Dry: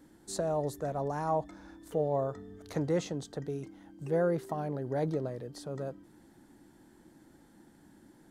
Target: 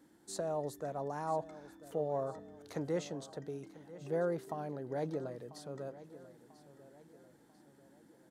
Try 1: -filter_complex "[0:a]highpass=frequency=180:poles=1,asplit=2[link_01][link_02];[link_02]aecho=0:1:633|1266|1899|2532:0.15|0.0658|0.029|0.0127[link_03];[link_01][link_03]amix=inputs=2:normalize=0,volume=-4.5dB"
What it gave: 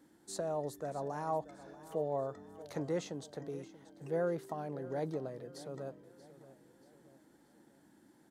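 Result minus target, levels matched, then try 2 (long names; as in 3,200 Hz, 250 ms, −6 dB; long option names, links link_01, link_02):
echo 359 ms early
-filter_complex "[0:a]highpass=frequency=180:poles=1,asplit=2[link_01][link_02];[link_02]aecho=0:1:992|1984|2976|3968:0.15|0.0658|0.029|0.0127[link_03];[link_01][link_03]amix=inputs=2:normalize=0,volume=-4.5dB"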